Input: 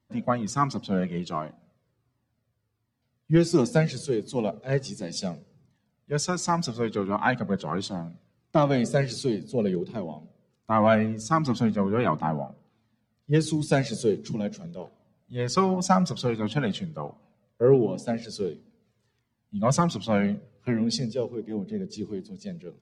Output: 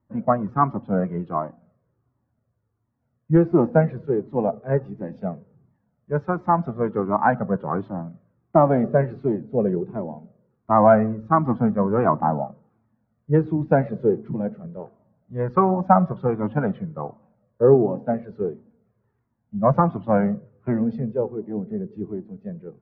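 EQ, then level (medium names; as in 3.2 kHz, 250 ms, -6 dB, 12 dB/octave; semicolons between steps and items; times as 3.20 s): low-pass 1.5 kHz 24 dB/octave; dynamic bell 760 Hz, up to +5 dB, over -35 dBFS, Q 1.3; +3.0 dB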